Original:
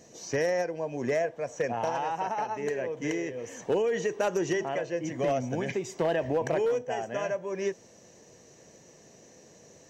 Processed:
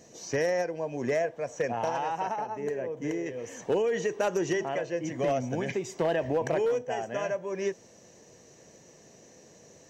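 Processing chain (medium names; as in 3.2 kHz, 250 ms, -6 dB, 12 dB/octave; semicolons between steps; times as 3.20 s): 2.36–3.26 s: peaking EQ 3.6 kHz -8 dB 3 oct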